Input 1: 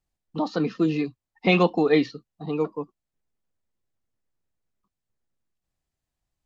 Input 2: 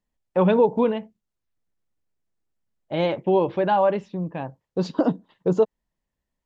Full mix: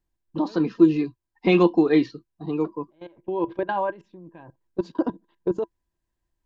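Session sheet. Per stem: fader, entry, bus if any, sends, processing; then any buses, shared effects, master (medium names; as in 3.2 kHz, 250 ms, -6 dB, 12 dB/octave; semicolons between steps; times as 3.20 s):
-4.0 dB, 0.00 s, no send, none
-4.0 dB, 0.00 s, no send, bass shelf 170 Hz -7.5 dB; level held to a coarse grid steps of 22 dB; auto duck -21 dB, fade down 0.40 s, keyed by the first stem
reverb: none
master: bass shelf 110 Hz +9.5 dB; small resonant body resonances 340/990/1600 Hz, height 13 dB, ringing for 70 ms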